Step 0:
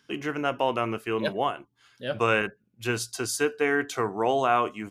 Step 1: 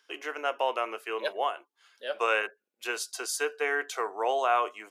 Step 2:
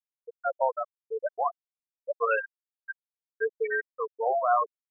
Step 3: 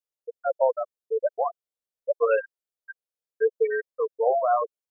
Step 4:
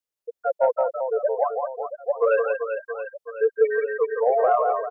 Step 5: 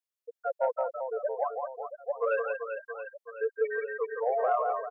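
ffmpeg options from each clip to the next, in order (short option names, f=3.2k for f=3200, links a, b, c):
-af "highpass=f=450:w=0.5412,highpass=f=450:w=1.3066,volume=-2dB"
-af "afftfilt=real='re*gte(hypot(re,im),0.2)':imag='im*gte(hypot(re,im),0.2)':win_size=1024:overlap=0.75,volume=3dB"
-af "equalizer=f=250:t=o:w=1:g=-6,equalizer=f=500:t=o:w=1:g=10,equalizer=f=1k:t=o:w=1:g=-4,equalizer=f=2k:t=o:w=1:g=-4"
-af "aecho=1:1:170|391|678.3|1052|1537:0.631|0.398|0.251|0.158|0.1,acontrast=32,volume=-3.5dB"
-af "highpass=f=670:p=1,volume=-4.5dB"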